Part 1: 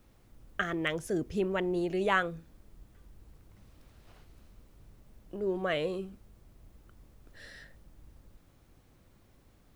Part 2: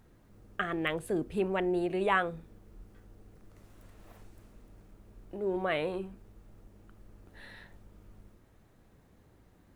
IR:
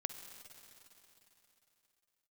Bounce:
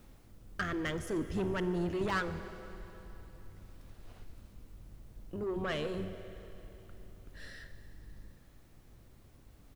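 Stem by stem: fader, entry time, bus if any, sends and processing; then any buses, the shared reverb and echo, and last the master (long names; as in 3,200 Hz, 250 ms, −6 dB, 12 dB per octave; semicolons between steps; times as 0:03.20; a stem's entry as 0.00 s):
+1.0 dB, 0.00 s, send −3.5 dB, sub-octave generator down 1 octave, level −4 dB; de-essing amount 95%; soft clipping −28 dBFS, distortion −12 dB; automatic ducking −11 dB, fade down 0.35 s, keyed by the second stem
−15.5 dB, 0.4 ms, no send, spectral tilt −4 dB per octave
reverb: on, RT60 3.5 s, pre-delay 45 ms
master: bit-depth reduction 12 bits, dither none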